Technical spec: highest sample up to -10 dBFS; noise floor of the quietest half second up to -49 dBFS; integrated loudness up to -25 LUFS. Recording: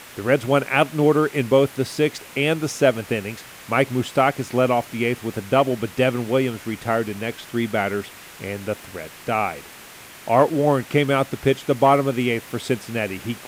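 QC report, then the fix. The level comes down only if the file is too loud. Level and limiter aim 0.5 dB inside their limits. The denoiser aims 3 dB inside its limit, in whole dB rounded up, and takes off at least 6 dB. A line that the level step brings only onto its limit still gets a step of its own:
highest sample -3.0 dBFS: fail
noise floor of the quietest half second -42 dBFS: fail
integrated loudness -21.5 LUFS: fail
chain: denoiser 6 dB, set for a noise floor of -42 dBFS; gain -4 dB; limiter -10.5 dBFS

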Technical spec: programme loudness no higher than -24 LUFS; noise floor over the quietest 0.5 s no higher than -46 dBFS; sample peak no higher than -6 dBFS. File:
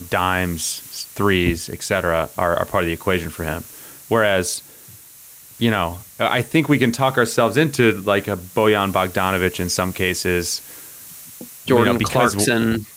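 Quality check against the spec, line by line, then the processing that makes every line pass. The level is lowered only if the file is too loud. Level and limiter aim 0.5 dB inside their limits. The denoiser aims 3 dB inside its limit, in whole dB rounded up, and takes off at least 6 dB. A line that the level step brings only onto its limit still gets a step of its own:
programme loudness -19.5 LUFS: fail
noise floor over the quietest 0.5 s -44 dBFS: fail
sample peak -3.5 dBFS: fail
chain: gain -5 dB

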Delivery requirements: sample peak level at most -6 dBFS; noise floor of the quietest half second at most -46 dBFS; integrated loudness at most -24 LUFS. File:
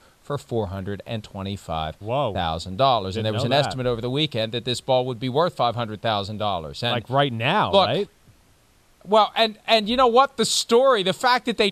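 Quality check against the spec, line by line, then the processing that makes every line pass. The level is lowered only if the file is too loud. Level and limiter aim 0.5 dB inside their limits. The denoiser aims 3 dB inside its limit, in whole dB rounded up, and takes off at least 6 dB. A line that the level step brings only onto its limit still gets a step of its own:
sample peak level -4.0 dBFS: fail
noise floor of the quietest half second -57 dBFS: OK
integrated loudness -22.0 LUFS: fail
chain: gain -2.5 dB

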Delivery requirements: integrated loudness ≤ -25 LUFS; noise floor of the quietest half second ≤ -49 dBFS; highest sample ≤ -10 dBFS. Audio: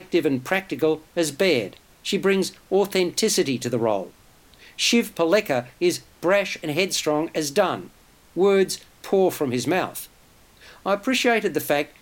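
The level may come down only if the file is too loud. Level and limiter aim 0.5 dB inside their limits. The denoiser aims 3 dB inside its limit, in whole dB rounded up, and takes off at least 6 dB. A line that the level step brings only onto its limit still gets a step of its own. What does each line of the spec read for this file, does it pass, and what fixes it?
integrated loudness -22.5 LUFS: fail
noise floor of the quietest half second -54 dBFS: OK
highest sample -6.0 dBFS: fail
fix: gain -3 dB; limiter -10.5 dBFS

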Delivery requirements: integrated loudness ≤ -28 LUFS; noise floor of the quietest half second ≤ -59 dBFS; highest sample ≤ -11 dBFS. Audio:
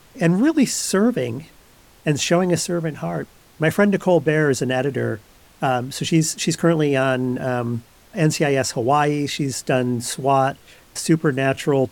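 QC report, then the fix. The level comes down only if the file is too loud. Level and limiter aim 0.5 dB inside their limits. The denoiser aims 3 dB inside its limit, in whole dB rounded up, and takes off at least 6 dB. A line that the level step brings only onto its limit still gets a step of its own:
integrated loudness -20.0 LUFS: fail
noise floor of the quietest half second -50 dBFS: fail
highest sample -5.0 dBFS: fail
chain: denoiser 6 dB, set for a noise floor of -50 dBFS; gain -8.5 dB

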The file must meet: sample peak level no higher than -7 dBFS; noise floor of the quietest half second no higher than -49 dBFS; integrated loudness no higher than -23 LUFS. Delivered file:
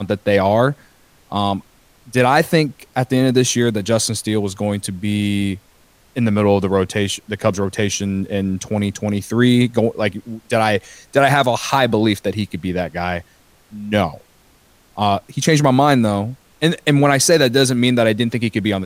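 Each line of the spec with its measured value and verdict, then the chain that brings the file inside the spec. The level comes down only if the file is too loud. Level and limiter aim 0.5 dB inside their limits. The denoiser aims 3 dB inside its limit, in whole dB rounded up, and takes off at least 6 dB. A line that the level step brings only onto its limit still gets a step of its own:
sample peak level -1.5 dBFS: fail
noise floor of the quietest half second -53 dBFS: OK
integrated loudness -17.5 LUFS: fail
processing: gain -6 dB

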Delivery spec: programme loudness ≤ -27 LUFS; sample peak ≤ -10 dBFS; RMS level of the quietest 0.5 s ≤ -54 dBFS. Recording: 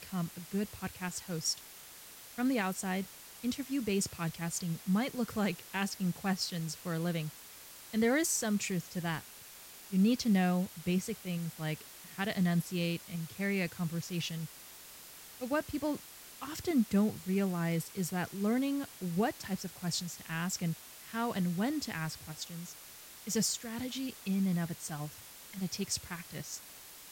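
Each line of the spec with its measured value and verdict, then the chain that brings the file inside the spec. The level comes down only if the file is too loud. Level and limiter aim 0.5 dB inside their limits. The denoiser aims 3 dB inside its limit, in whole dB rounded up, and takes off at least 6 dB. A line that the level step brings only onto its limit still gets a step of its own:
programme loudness -34.5 LUFS: OK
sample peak -19.0 dBFS: OK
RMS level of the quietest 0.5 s -52 dBFS: fail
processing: denoiser 6 dB, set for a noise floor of -52 dBFS

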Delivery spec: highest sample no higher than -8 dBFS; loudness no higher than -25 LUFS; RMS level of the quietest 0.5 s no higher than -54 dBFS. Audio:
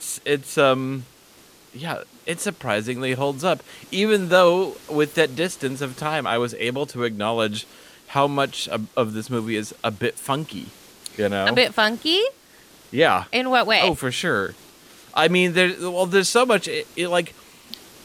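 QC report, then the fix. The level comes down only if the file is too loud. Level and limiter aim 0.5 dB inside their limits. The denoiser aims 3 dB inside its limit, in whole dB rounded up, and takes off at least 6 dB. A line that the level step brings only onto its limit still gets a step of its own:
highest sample -4.5 dBFS: fail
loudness -21.5 LUFS: fail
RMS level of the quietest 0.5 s -51 dBFS: fail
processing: gain -4 dB

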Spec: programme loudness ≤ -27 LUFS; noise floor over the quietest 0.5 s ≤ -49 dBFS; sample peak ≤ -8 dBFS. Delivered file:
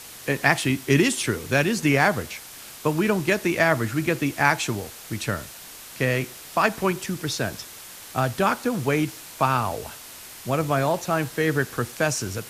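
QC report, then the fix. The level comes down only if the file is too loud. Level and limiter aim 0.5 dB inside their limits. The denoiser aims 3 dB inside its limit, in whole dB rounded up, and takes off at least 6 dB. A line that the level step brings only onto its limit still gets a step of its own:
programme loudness -23.5 LUFS: fail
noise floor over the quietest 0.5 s -42 dBFS: fail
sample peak -3.0 dBFS: fail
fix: denoiser 6 dB, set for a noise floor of -42 dBFS; gain -4 dB; limiter -8.5 dBFS

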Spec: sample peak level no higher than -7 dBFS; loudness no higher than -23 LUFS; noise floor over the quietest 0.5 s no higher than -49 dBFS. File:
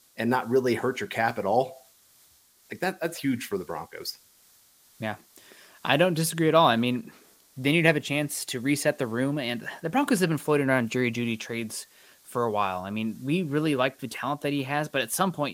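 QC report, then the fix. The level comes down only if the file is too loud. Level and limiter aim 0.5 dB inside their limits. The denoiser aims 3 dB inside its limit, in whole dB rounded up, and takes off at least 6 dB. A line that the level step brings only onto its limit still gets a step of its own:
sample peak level -4.0 dBFS: fail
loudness -26.5 LUFS: OK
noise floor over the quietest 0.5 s -60 dBFS: OK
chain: limiter -7.5 dBFS

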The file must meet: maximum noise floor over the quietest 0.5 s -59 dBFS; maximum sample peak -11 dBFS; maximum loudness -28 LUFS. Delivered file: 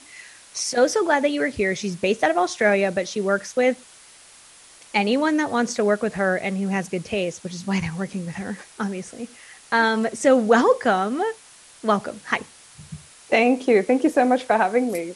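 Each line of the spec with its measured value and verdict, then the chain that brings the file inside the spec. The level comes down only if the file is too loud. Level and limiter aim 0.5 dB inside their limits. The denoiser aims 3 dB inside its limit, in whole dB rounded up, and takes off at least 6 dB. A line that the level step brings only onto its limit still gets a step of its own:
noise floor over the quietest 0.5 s -49 dBFS: fail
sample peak -4.0 dBFS: fail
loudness -21.5 LUFS: fail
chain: denoiser 6 dB, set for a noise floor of -49 dBFS; gain -7 dB; limiter -11.5 dBFS

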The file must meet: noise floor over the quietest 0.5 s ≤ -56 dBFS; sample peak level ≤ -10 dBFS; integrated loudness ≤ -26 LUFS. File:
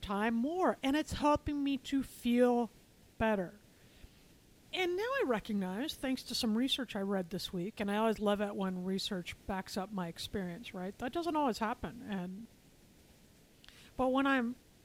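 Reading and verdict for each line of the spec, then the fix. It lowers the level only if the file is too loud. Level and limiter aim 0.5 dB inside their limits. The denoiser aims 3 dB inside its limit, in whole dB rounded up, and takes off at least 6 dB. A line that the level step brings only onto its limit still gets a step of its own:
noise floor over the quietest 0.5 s -63 dBFS: OK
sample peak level -17.0 dBFS: OK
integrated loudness -35.0 LUFS: OK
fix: none

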